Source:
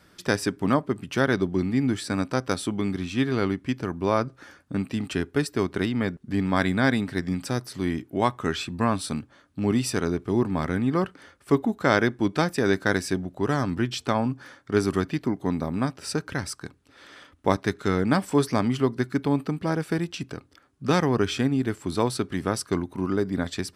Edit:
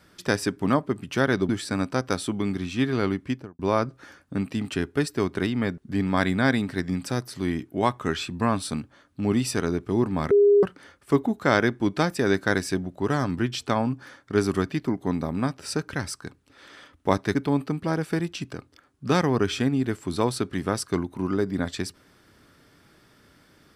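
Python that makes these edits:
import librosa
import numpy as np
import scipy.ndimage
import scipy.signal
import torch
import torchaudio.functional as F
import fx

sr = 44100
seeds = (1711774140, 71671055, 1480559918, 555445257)

y = fx.studio_fade_out(x, sr, start_s=3.64, length_s=0.34)
y = fx.edit(y, sr, fx.cut(start_s=1.49, length_s=0.39),
    fx.bleep(start_s=10.7, length_s=0.32, hz=407.0, db=-13.0),
    fx.cut(start_s=17.74, length_s=1.4), tone=tone)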